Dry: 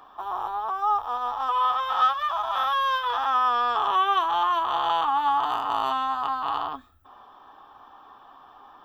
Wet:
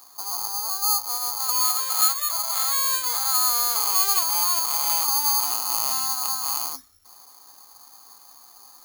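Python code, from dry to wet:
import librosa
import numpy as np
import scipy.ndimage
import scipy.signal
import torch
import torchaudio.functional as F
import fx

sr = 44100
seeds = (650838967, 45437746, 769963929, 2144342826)

y = (np.kron(x[::8], np.eye(8)[0]) * 8)[:len(x)]
y = y * librosa.db_to_amplitude(-8.0)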